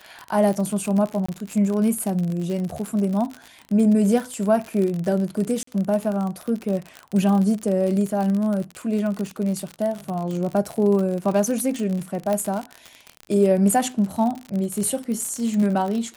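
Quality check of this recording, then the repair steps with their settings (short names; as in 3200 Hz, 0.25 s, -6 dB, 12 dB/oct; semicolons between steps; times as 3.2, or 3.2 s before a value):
crackle 54/s -25 dBFS
1.26–1.28 gap 25 ms
5.63–5.67 gap 44 ms
12.33 pop -12 dBFS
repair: de-click; interpolate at 1.26, 25 ms; interpolate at 5.63, 44 ms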